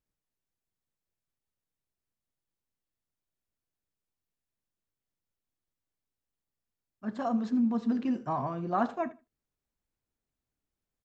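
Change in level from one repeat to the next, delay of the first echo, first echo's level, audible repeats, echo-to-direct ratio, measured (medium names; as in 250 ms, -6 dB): -15.0 dB, 78 ms, -19.0 dB, 2, -19.0 dB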